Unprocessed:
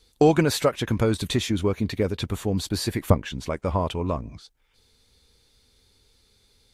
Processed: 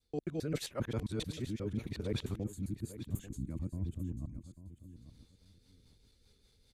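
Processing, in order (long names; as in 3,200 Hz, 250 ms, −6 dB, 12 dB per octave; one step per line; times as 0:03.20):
reversed piece by piece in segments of 133 ms
low-shelf EQ 410 Hz +5.5 dB
reversed playback
downward compressor 6 to 1, threshold −25 dBFS, peak gain reduction 16.5 dB
reversed playback
rotating-speaker cabinet horn 0.8 Hz, later 5 Hz, at 0:04.67
gain on a spectral selection 0:02.43–0:04.96, 360–6,300 Hz −17 dB
on a send: repeating echo 842 ms, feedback 22%, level −14 dB
on the sum: level −7 dB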